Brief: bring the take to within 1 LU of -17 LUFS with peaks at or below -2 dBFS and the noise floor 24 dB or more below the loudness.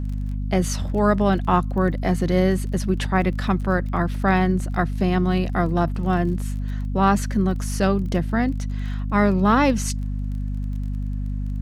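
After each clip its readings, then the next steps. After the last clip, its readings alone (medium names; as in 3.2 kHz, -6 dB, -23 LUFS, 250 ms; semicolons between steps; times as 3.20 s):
tick rate 23 per s; hum 50 Hz; highest harmonic 250 Hz; hum level -23 dBFS; loudness -22.5 LUFS; peak level -3.0 dBFS; loudness target -17.0 LUFS
-> de-click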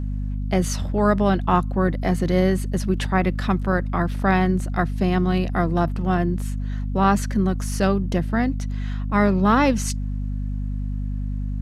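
tick rate 0 per s; hum 50 Hz; highest harmonic 250 Hz; hum level -23 dBFS
-> de-hum 50 Hz, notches 5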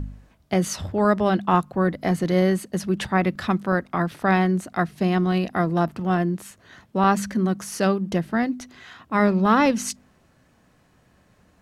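hum not found; loudness -22.5 LUFS; peak level -4.5 dBFS; loudness target -17.0 LUFS
-> trim +5.5 dB; peak limiter -2 dBFS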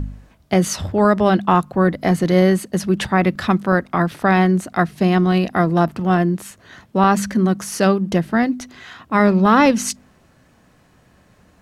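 loudness -17.5 LUFS; peak level -2.0 dBFS; noise floor -55 dBFS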